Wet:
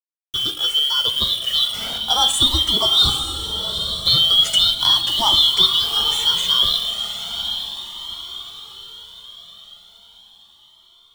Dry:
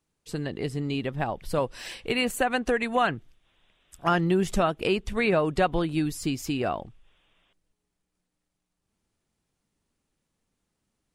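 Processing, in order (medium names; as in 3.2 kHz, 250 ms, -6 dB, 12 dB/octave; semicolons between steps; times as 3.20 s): four frequency bands reordered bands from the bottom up 2413; level-controlled noise filter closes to 800 Hz, open at -24.5 dBFS; treble shelf 7 kHz +8 dB; expander -45 dBFS; in parallel at +3 dB: level held to a coarse grid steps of 16 dB; on the sum: resampled via 22.05 kHz; bit crusher 6-bit; echo that smears into a reverb 845 ms, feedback 46%, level -7.5 dB; on a send at -6 dB: reverberation, pre-delay 3 ms; on the sum: Shepard-style flanger rising 0.37 Hz; trim +6.5 dB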